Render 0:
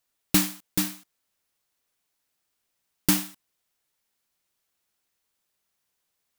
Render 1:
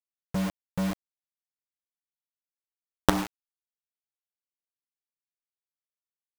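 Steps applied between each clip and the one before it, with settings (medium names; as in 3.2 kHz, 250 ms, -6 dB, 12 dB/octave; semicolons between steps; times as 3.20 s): low-pass sweep 130 Hz -> 1.3 kHz, 0.23–3.64 s; companded quantiser 2-bit; trim -1 dB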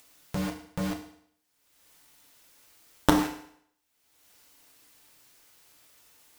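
upward compressor, threshold -30 dBFS; FDN reverb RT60 0.65 s, low-frequency decay 0.9×, high-frequency decay 1×, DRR 2.5 dB; trim -2 dB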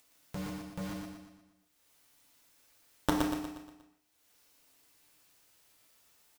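feedback delay 119 ms, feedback 48%, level -4 dB; trim -8.5 dB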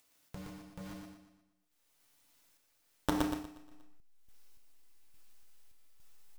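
in parallel at -4 dB: hysteresis with a dead band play -27 dBFS; on the sum: random-step tremolo; trim -3 dB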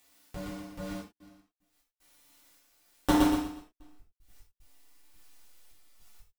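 trance gate "xxxxx.x.x.xxx" 75 bpm -60 dB; gated-style reverb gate 130 ms falling, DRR -6.5 dB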